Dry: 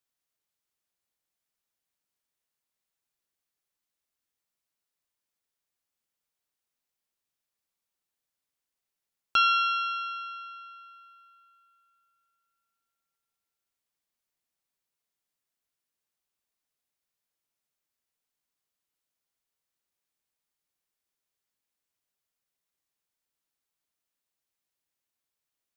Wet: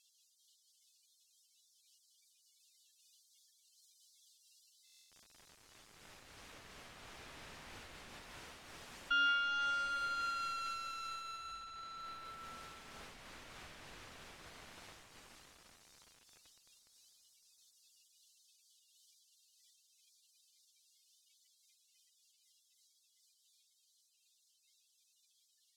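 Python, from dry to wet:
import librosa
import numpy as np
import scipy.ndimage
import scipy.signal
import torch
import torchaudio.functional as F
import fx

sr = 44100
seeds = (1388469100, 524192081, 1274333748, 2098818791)

p1 = x + 0.5 * 10.0 ** (-20.5 / 20.0) * np.diff(np.sign(x), prepend=np.sign(x[:1]))
p2 = fx.doppler_pass(p1, sr, speed_mps=9, closest_m=4.4, pass_at_s=10.43)
p3 = fx.tube_stage(p2, sr, drive_db=26.0, bias=0.45)
p4 = fx.peak_eq(p3, sr, hz=450.0, db=-9.5, octaves=0.64)
p5 = fx.spec_gate(p4, sr, threshold_db=-15, keep='strong')
p6 = (np.mod(10.0 ** (41.0 / 20.0) * p5 + 1.0, 2.0) - 1.0) / 10.0 ** (41.0 / 20.0)
p7 = p5 + (p6 * librosa.db_to_amplitude(-3.5))
p8 = scipy.signal.sosfilt(scipy.signal.butter(2, 2700.0, 'lowpass', fs=sr, output='sos'), p7)
p9 = fx.low_shelf(p8, sr, hz=110.0, db=6.5)
p10 = p9 + fx.echo_feedback(p9, sr, ms=752, feedback_pct=42, wet_db=-21, dry=0)
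p11 = fx.buffer_glitch(p10, sr, at_s=(4.85,), block=1024, repeats=10)
p12 = fx.am_noise(p11, sr, seeds[0], hz=5.7, depth_pct=50)
y = p12 * librosa.db_to_amplitude(5.5)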